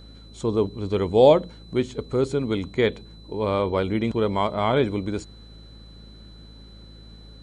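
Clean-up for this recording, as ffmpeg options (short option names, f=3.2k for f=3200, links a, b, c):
-af "bandreject=f=53.8:t=h:w=4,bandreject=f=107.6:t=h:w=4,bandreject=f=161.4:t=h:w=4,bandreject=f=215.2:t=h:w=4,bandreject=f=269:t=h:w=4,bandreject=f=4k:w=30"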